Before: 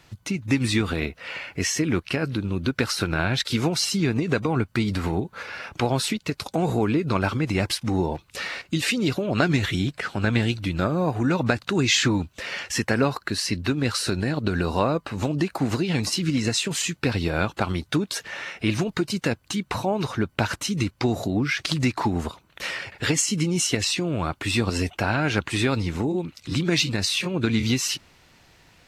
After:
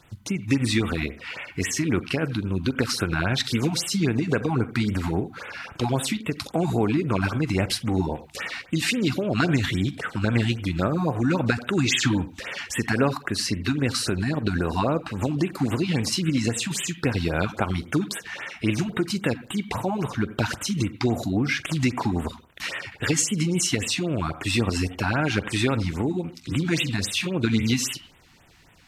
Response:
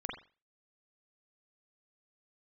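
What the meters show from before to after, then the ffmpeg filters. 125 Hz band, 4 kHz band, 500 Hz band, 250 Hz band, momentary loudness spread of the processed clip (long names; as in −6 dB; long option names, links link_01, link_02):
0.0 dB, −2.0 dB, −1.0 dB, 0.0 dB, 7 LU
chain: -filter_complex "[0:a]asplit=2[link_01][link_02];[1:a]atrim=start_sample=2205,adelay=43[link_03];[link_02][link_03]afir=irnorm=-1:irlink=0,volume=-15.5dB[link_04];[link_01][link_04]amix=inputs=2:normalize=0,afftfilt=real='re*(1-between(b*sr/1024,430*pow(5500/430,0.5+0.5*sin(2*PI*3.7*pts/sr))/1.41,430*pow(5500/430,0.5+0.5*sin(2*PI*3.7*pts/sr))*1.41))':imag='im*(1-between(b*sr/1024,430*pow(5500/430,0.5+0.5*sin(2*PI*3.7*pts/sr))/1.41,430*pow(5500/430,0.5+0.5*sin(2*PI*3.7*pts/sr))*1.41))':win_size=1024:overlap=0.75"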